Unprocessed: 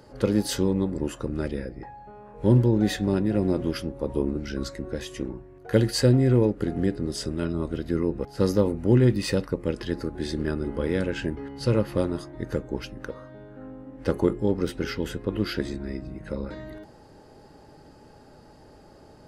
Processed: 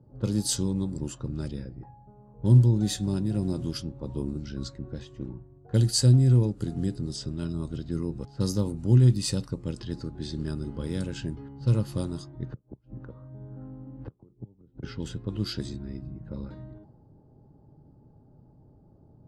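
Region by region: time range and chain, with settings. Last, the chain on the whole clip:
0:12.43–0:14.83: low-pass filter 4,100 Hz + gate with flip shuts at −19 dBFS, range −31 dB + multiband upward and downward compressor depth 70%
whole clip: low-pass that shuts in the quiet parts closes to 530 Hz, open at −21.5 dBFS; octave-band graphic EQ 125/500/2,000/4,000/8,000 Hz +9/−7/−10/+5/+12 dB; level −5.5 dB

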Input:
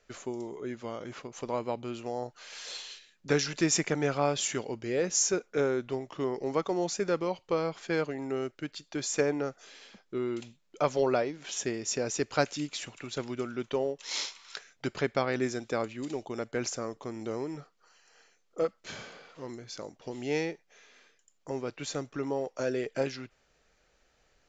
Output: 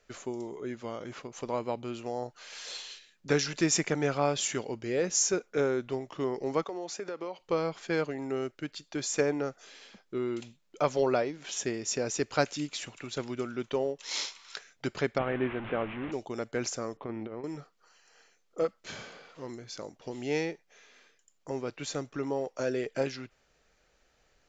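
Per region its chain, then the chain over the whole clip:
0:06.64–0:07.40: high-pass filter 310 Hz + high-shelf EQ 4,800 Hz −7.5 dB + downward compressor 5 to 1, threshold −33 dBFS
0:15.18–0:16.12: linear delta modulator 16 kbit/s, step −32.5 dBFS + high-frequency loss of the air 110 metres
0:16.97–0:17.44: low-pass filter 2,900 Hz 24 dB per octave + compressor whose output falls as the input rises −37 dBFS, ratio −0.5
whole clip: no processing

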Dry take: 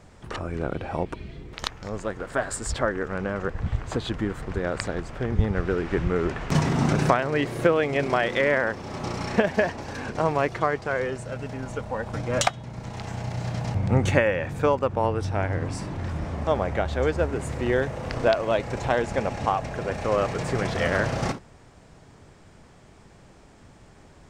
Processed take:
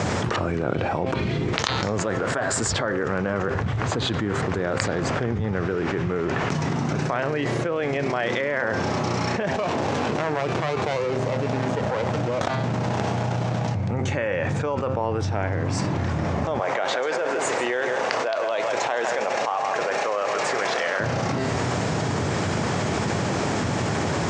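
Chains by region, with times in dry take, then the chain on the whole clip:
0:09.53–0:13.68: low-shelf EQ 130 Hz −10 dB + windowed peak hold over 17 samples
0:16.59–0:21.00: high-pass filter 550 Hz + single-tap delay 159 ms −11 dB
whole clip: Chebyshev band-pass filter 100–7,000 Hz, order 3; hum removal 131.6 Hz, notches 37; envelope flattener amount 100%; level −8 dB

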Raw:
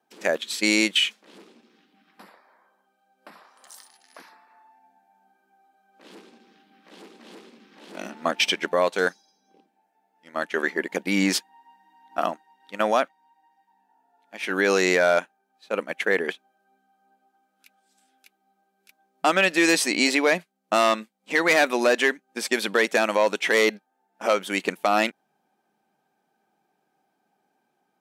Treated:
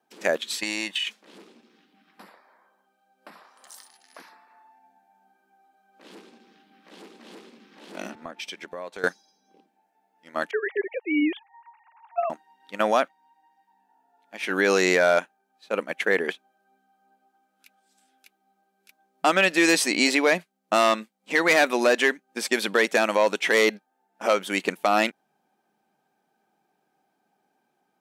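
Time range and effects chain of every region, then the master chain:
0:00.58–0:01.07: bass and treble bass −13 dB, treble −4 dB + comb filter 1.1 ms, depth 61% + downward compressor 10 to 1, threshold −23 dBFS
0:08.15–0:09.04: notch filter 2,900 Hz, Q 24 + downward compressor 3 to 1, threshold −37 dBFS + multiband upward and downward expander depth 40%
0:10.51–0:12.30: three sine waves on the formant tracks + parametric band 1,400 Hz −7.5 dB 1.1 octaves
whole clip: no processing

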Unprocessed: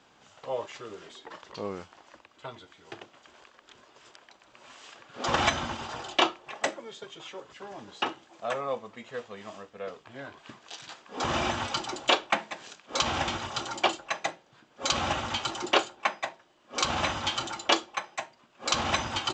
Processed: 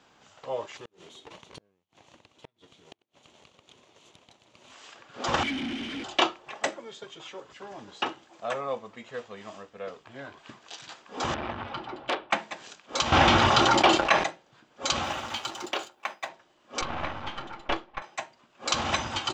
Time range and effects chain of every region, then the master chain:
0:00.77–0:04.72: lower of the sound and its delayed copy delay 0.3 ms + Chebyshev band-pass filter 110–7,200 Hz + gate with flip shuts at −31 dBFS, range −36 dB
0:05.43–0:06.04: formant filter i + power curve on the samples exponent 0.35 + high-frequency loss of the air 130 metres
0:11.34–0:12.31: high-frequency loss of the air 410 metres + saturating transformer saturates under 2,500 Hz
0:13.12–0:14.24: leveller curve on the samples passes 2 + high-frequency loss of the air 120 metres + envelope flattener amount 70%
0:15.03–0:16.29: mu-law and A-law mismatch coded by A + low-shelf EQ 180 Hz −8 dB + downward compressor, threshold −25 dBFS
0:16.81–0:18.02: gain on one half-wave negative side −12 dB + low-pass filter 2,300 Hz
whole clip: no processing

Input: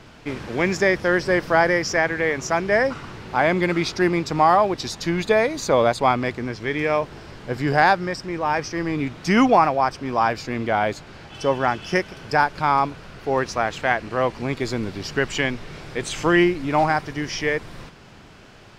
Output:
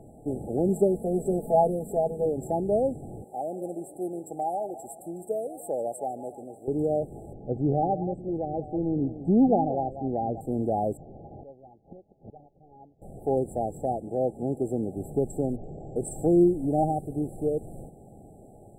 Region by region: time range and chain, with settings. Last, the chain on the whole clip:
0:00.68–0:02.26: low-shelf EQ 280 Hz −4.5 dB + comb filter 4.6 ms, depth 86%
0:03.24–0:06.68: high-pass filter 1,300 Hz 6 dB per octave + feedback echo with a swinging delay time 145 ms, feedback 60%, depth 212 cents, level −17.5 dB
0:07.33–0:10.41: head-to-tape spacing loss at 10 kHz 32 dB + single-tap delay 190 ms −13 dB
0:10.97–0:13.02: variable-slope delta modulation 16 kbit/s + gate with flip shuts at −29 dBFS, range −24 dB
0:14.00–0:14.97: high-pass filter 140 Hz 6 dB per octave + high-shelf EQ 7,100 Hz −6.5 dB
0:15.56–0:15.96: all-pass dispersion highs, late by 82 ms, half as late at 2,700 Hz + bad sample-rate conversion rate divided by 3×, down none, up filtered
whole clip: low-shelf EQ 160 Hz −3.5 dB; brick-wall band-stop 850–7,500 Hz; dynamic equaliser 750 Hz, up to −6 dB, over −32 dBFS, Q 1.3

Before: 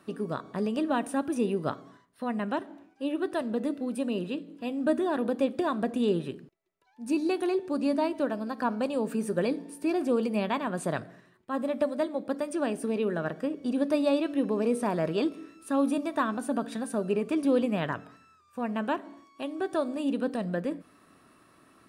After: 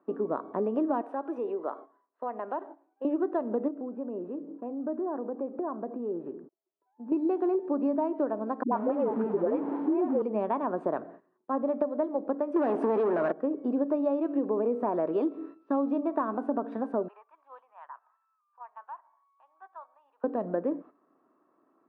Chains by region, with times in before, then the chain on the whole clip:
0:01.01–0:03.05: high-pass filter 470 Hz + downward compressor 2 to 1, threshold −35 dBFS
0:03.68–0:07.12: low-pass filter 1,600 Hz + downward compressor 2.5 to 1, threshold −39 dBFS
0:08.63–0:10.22: converter with a step at zero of −29.5 dBFS + high-frequency loss of the air 230 metres + all-pass dispersion highs, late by 95 ms, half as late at 400 Hz
0:12.56–0:13.32: tilt shelving filter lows −4 dB, about 1,100 Hz + leveller curve on the samples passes 5
0:14.92–0:15.99: linear-phase brick-wall low-pass 6,300 Hz + parametric band 4,100 Hz +5.5 dB 1.3 octaves
0:17.08–0:20.24: Chebyshev high-pass filter 930 Hz, order 4 + downward compressor 2.5 to 1, threshold −47 dBFS + spectral tilt −3.5 dB per octave
whole clip: noise gate −49 dBFS, range −12 dB; Chebyshev band-pass filter 300–1,000 Hz, order 2; downward compressor, threshold −30 dBFS; level +6 dB

